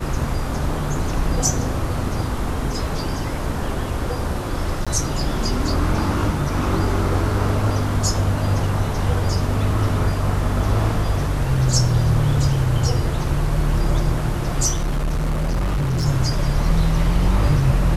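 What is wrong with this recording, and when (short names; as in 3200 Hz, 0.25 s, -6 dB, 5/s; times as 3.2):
4.85–4.87 gap 16 ms
14.73–16.06 clipped -17.5 dBFS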